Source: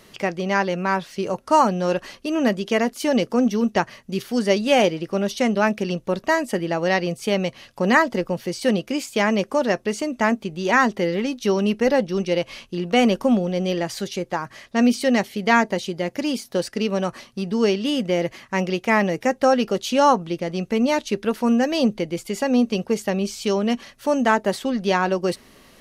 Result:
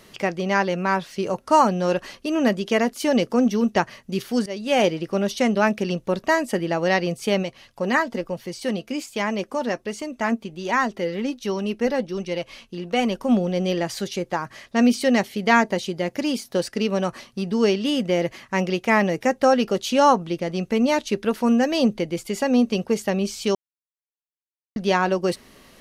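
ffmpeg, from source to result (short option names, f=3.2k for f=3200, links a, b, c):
-filter_complex "[0:a]asplit=3[a][b][c];[a]afade=t=out:st=7.42:d=0.02[d];[b]flanger=delay=0.9:depth=3.6:regen=65:speed=1.3:shape=sinusoidal,afade=t=in:st=7.42:d=0.02,afade=t=out:st=13.28:d=0.02[e];[c]afade=t=in:st=13.28:d=0.02[f];[d][e][f]amix=inputs=3:normalize=0,asplit=4[g][h][i][j];[g]atrim=end=4.46,asetpts=PTS-STARTPTS,afade=t=out:st=4.456:d=0.004:c=hsin:silence=0.105925[k];[h]atrim=start=4.46:end=23.55,asetpts=PTS-STARTPTS,afade=t=in:d=0.43:silence=0.105925,afade=t=out:st=19.086:d=0.004:c=hsin[l];[i]atrim=start=23.55:end=24.76,asetpts=PTS-STARTPTS,volume=0[m];[j]atrim=start=24.76,asetpts=PTS-STARTPTS,afade=t=in:d=0.004:c=hsin[n];[k][l][m][n]concat=n=4:v=0:a=1"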